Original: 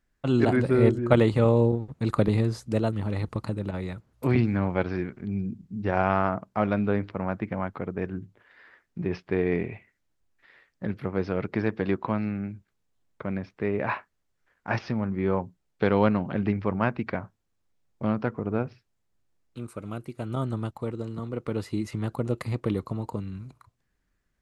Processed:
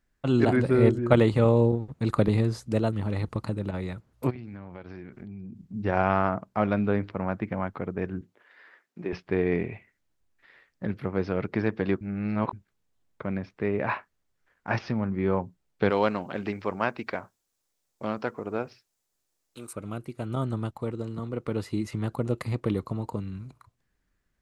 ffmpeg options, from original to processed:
-filter_complex "[0:a]asplit=3[a][b][c];[a]afade=t=out:st=4.29:d=0.02[d];[b]acompressor=threshold=-37dB:ratio=8:attack=3.2:release=140:knee=1:detection=peak,afade=t=in:st=4.29:d=0.02,afade=t=out:st=5.73:d=0.02[e];[c]afade=t=in:st=5.73:d=0.02[f];[d][e][f]amix=inputs=3:normalize=0,asettb=1/sr,asplit=3[g][h][i];[g]atrim=end=8.214[j];[h]atrim=start=8.21:end=9.13,asetpts=PTS-STARTPTS,afade=t=in:d=0.004:c=qsin,afade=t=out:st=0.916:d=0.004:c=qsin,highpass=290[k];[i]atrim=start=9.126[l];[j][k]acrossfade=d=0.004:c1=hsin:c2=qsin[m];[m][l]acrossfade=d=0.004:c1=qsin:c2=hsin,asettb=1/sr,asplit=3[n][o][p];[n]atrim=end=15.904[q];[o]atrim=start=15.9:end=19.73,asetpts=PTS-STARTPTS,afade=t=in:d=0.004:c=qsin,afade=t=out:st=3.826:d=0.004:c=qsin,bass=f=250:g=-12,treble=f=4k:g=11[r];[p]atrim=start=19.726[s];[q][r]acrossfade=d=0.004:c1=hsin:c2=qsin[t];[t][s]acrossfade=d=0.004:c1=qsin:c2=hsin,asplit=3[u][v][w];[u]atrim=end=12.012[x];[v]atrim=start=12.008:end=12.532,asetpts=PTS-STARTPTS,areverse[y];[w]atrim=start=12.528[z];[x][y]acrossfade=d=0.004:c1=hsin:c2=hsin[aa];[aa][z]acrossfade=d=0.004:c1=hsin:c2=hsin"

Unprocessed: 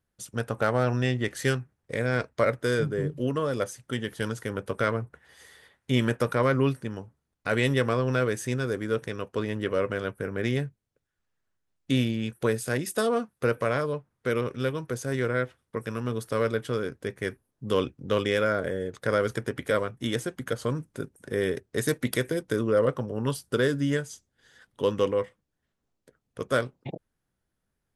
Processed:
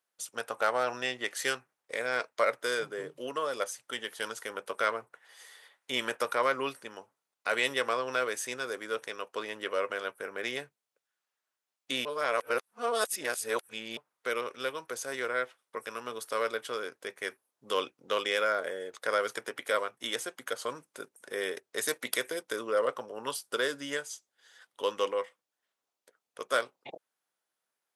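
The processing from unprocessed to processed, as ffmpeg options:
-filter_complex "[0:a]asplit=3[a][b][c];[a]atrim=end=12.052[d];[b]atrim=start=12.048:end=13.972,asetpts=PTS-STARTPTS,areverse[e];[c]atrim=start=13.968[f];[d][e]acrossfade=d=0.004:c1=hsin:c2=hsin[g];[g][f]acrossfade=d=0.004:c1=hsin:c2=hsin,highpass=710,equalizer=f=1.7k:w=2.8:g=-3.5,volume=1.5dB"

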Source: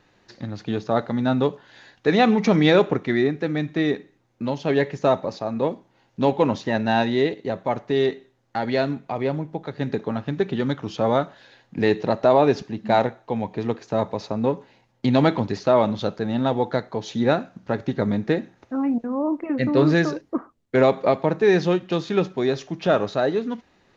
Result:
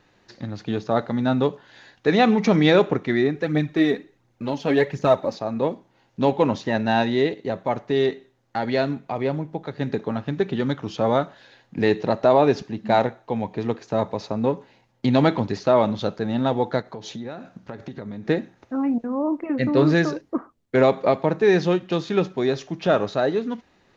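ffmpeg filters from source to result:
-filter_complex "[0:a]asplit=3[a][b][c];[a]afade=t=out:st=3.34:d=0.02[d];[b]aphaser=in_gain=1:out_gain=1:delay=4.6:decay=0.46:speed=1.4:type=triangular,afade=t=in:st=3.34:d=0.02,afade=t=out:st=5.34:d=0.02[e];[c]afade=t=in:st=5.34:d=0.02[f];[d][e][f]amix=inputs=3:normalize=0,asplit=3[g][h][i];[g]afade=t=out:st=16.81:d=0.02[j];[h]acompressor=threshold=-31dB:ratio=5:attack=3.2:release=140:knee=1:detection=peak,afade=t=in:st=16.81:d=0.02,afade=t=out:st=18.25:d=0.02[k];[i]afade=t=in:st=18.25:d=0.02[l];[j][k][l]amix=inputs=3:normalize=0"

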